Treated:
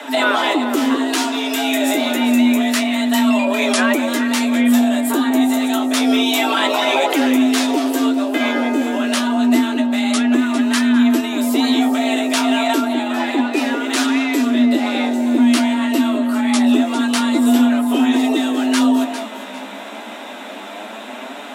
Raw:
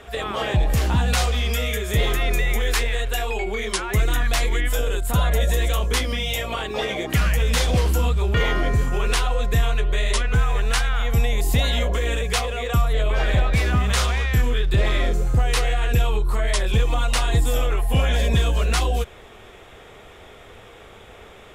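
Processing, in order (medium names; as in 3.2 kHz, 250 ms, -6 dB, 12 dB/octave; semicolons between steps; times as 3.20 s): in parallel at +2 dB: compressor with a negative ratio -28 dBFS, ratio -1; on the sum: frequency shift +200 Hz; on a send: echo whose repeats swap between lows and highs 201 ms, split 970 Hz, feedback 53%, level -5.5 dB; on the sum: flange 0.28 Hz, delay 6.8 ms, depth 8.5 ms, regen +45%; bass shelf 210 Hz -5.5 dB; band-stop 2.2 kHz, Q 30; trim +4 dB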